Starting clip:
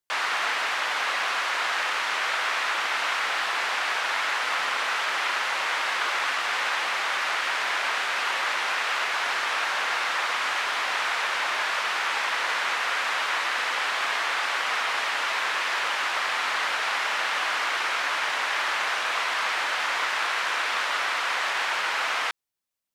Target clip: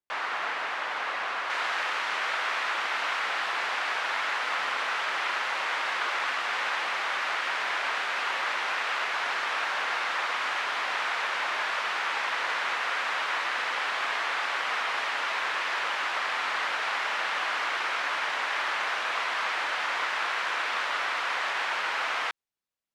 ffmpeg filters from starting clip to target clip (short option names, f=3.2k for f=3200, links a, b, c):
-af "asetnsamples=n=441:p=0,asendcmd='1.5 lowpass f 3900',lowpass=f=1.7k:p=1,volume=-2dB"